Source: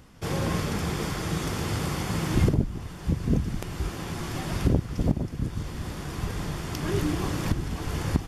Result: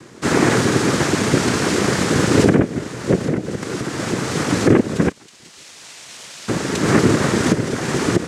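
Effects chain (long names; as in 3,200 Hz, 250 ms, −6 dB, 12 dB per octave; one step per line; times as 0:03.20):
0:03.18–0:04.28: downward compressor 6 to 1, threshold −28 dBFS, peak gain reduction 10 dB
0:05.08–0:06.48: first difference
cochlear-implant simulation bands 3
boost into a limiter +13.5 dB
level −1 dB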